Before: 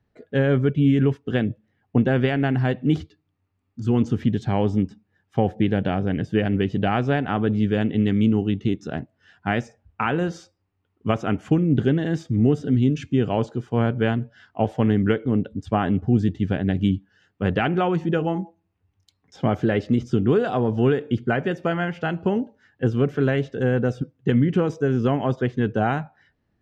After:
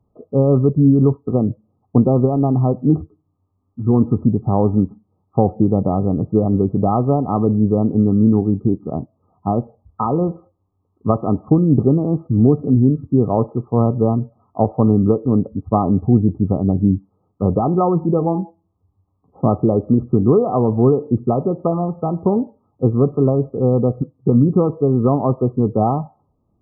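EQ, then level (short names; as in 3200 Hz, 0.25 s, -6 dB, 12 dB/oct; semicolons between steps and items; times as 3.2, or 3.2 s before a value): brick-wall FIR low-pass 1300 Hz; +5.5 dB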